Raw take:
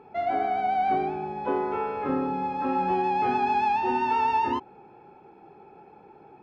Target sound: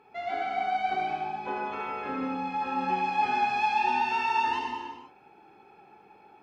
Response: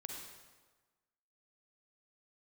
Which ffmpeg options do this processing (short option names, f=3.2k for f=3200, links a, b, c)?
-filter_complex "[0:a]tiltshelf=f=1.2k:g=-7.5,bandreject=f=56.04:t=h:w=4,bandreject=f=112.08:t=h:w=4,bandreject=f=168.12:t=h:w=4,bandreject=f=224.16:t=h:w=4,bandreject=f=280.2:t=h:w=4,bandreject=f=336.24:t=h:w=4,bandreject=f=392.28:t=h:w=4,bandreject=f=448.32:t=h:w=4,bandreject=f=504.36:t=h:w=4,bandreject=f=560.4:t=h:w=4,bandreject=f=616.44:t=h:w=4,bandreject=f=672.48:t=h:w=4,bandreject=f=728.52:t=h:w=4,bandreject=f=784.56:t=h:w=4,bandreject=f=840.6:t=h:w=4,bandreject=f=896.64:t=h:w=4,bandreject=f=952.68:t=h:w=4,bandreject=f=1.00872k:t=h:w=4,bandreject=f=1.06476k:t=h:w=4,bandreject=f=1.1208k:t=h:w=4,bandreject=f=1.17684k:t=h:w=4,bandreject=f=1.23288k:t=h:w=4,bandreject=f=1.28892k:t=h:w=4,bandreject=f=1.34496k:t=h:w=4,bandreject=f=1.401k:t=h:w=4,bandreject=f=1.45704k:t=h:w=4,bandreject=f=1.51308k:t=h:w=4,bandreject=f=1.56912k:t=h:w=4[a];[1:a]atrim=start_sample=2205,afade=t=out:st=0.44:d=0.01,atrim=end_sample=19845,asetrate=33075,aresample=44100[b];[a][b]afir=irnorm=-1:irlink=0"